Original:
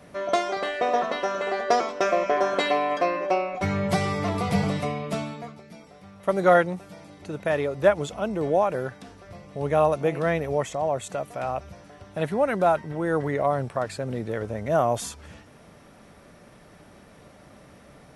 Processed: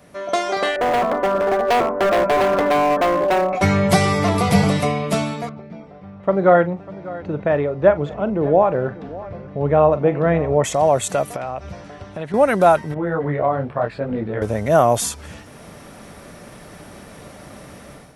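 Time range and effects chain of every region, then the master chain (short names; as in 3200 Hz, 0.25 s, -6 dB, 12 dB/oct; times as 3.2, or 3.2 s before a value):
0.76–3.53 LPF 1300 Hz 24 dB/oct + low shelf 170 Hz +8.5 dB + hard clip -24.5 dBFS
5.49–10.64 tape spacing loss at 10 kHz 41 dB + tapped delay 41/596 ms -13.5/-19 dB
11.36–12.34 air absorption 90 m + compressor 3:1, threshold -36 dBFS
12.94–14.42 air absorption 390 m + detuned doubles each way 29 cents
whole clip: high shelf 8800 Hz +8.5 dB; AGC gain up to 10.5 dB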